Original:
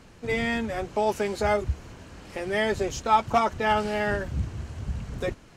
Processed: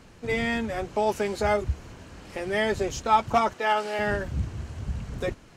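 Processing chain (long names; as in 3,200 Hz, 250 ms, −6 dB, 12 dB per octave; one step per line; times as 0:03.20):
0:03.53–0:03.99: high-pass filter 390 Hz 12 dB per octave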